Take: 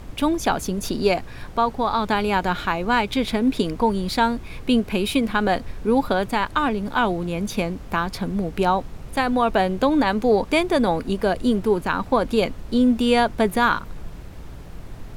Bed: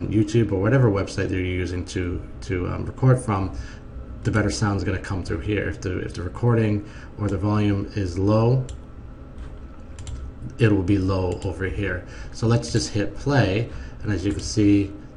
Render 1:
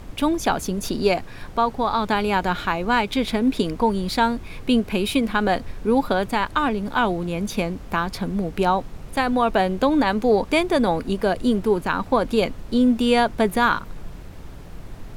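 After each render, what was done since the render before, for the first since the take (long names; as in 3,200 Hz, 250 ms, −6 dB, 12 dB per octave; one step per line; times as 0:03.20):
hum removal 60 Hz, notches 2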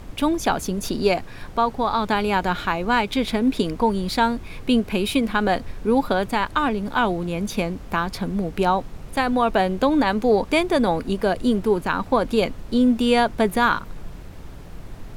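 no processing that can be heard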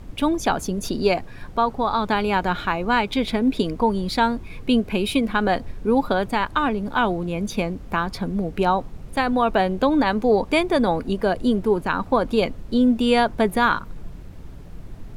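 broadband denoise 6 dB, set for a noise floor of −39 dBFS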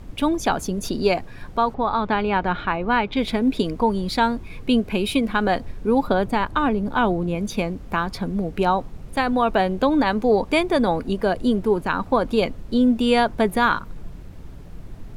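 0:01.74–0:03.17: low-pass filter 3,100 Hz
0:06.07–0:07.35: tilt shelving filter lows +3 dB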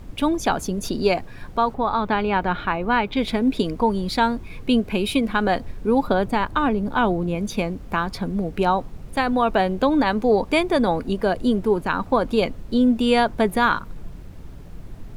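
bit reduction 11 bits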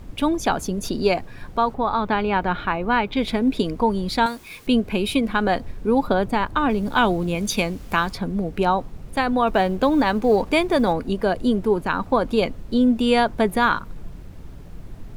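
0:04.26–0:04.67: spectral tilt +4 dB per octave
0:06.69–0:08.13: high-shelf EQ 2,100 Hz +10.5 dB
0:09.47–0:10.93: mu-law and A-law mismatch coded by mu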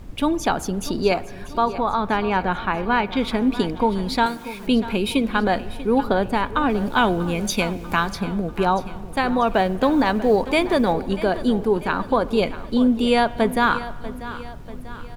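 repeating echo 641 ms, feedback 51%, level −15 dB
spring reverb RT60 1.6 s, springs 47 ms, chirp 50 ms, DRR 18.5 dB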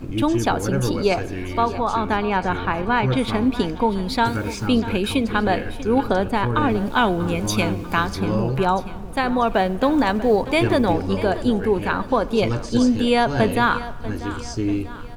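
mix in bed −5.5 dB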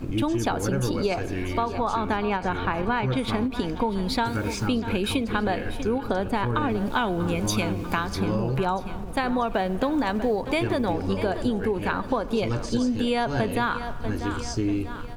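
downward compressor, threshold −21 dBFS, peak gain reduction 8.5 dB
every ending faded ahead of time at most 180 dB per second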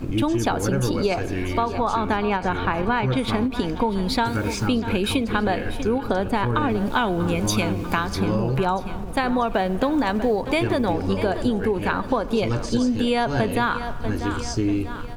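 level +3 dB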